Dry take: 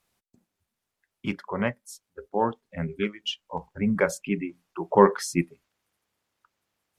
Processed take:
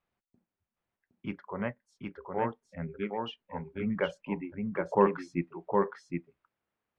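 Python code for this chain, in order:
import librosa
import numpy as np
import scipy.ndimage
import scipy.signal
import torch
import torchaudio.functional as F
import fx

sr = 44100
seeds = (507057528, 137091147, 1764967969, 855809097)

p1 = scipy.signal.sosfilt(scipy.signal.butter(2, 2300.0, 'lowpass', fs=sr, output='sos'), x)
p2 = p1 + fx.echo_single(p1, sr, ms=765, db=-3.5, dry=0)
y = F.gain(torch.from_numpy(p2), -7.0).numpy()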